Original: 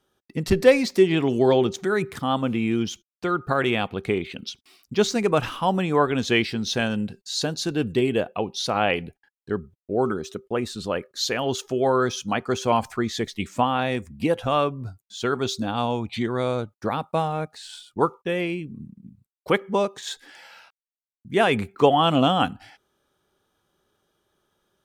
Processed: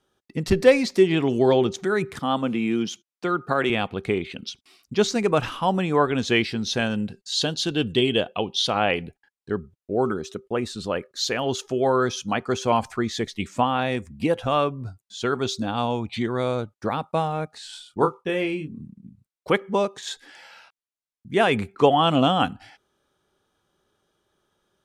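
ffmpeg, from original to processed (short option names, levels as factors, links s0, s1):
-filter_complex "[0:a]asettb=1/sr,asplit=3[s0][s1][s2];[s0]atrim=end=2.194[s3];[s1]atrim=start=2.19:end=3.7,asetpts=PTS-STARTPTS,afade=t=in:d=0.004:c=qsin,afade=t=out:st=1.506:d=0.004:c=qsin,highpass=f=140:w=0.5412,highpass=f=140:w=1.3066[s4];[s2]atrim=start=3.696[s5];[s3][s4]acrossfade=d=0.004:c1=hsin:c2=qsin[s6];[s6][s5]acrossfade=d=0.004:c1=qsin:c2=hsin,asettb=1/sr,asplit=3[s7][s8][s9];[s7]atrim=end=7.324[s10];[s8]atrim=start=7.32:end=8.75,asetpts=PTS-STARTPTS,afade=t=in:d=0.004:c=qsin,afade=t=out:st=1.426:d=0.004:c=qsin,equalizer=f=3200:t=o:w=0.36:g=14.5[s11];[s9]atrim=start=8.746[s12];[s10][s11]acrossfade=d=0.004:c1=hsin:c2=qsin[s13];[s13][s12]acrossfade=d=0.004:c1=qsin:c2=hsin,asettb=1/sr,asplit=3[s14][s15][s16];[s14]atrim=end=17.524[s17];[s15]atrim=start=17.52:end=18.81,asetpts=PTS-STARTPTS,afade=t=in:d=0.004:c=qsin,afade=t=out:st=1.286:d=0.004:c=qsin,asplit=2[s18][s19];[s19]adelay=26,volume=0.473[s20];[s18][s20]amix=inputs=2:normalize=0,atrim=end_sample=56889[s21];[s16]atrim=start=18.806[s22];[s17][s21]acrossfade=d=0.004:c1=hsin:c2=qsin[s23];[s23][s22]acrossfade=d=0.004:c1=qsin:c2=hsin,lowpass=11000"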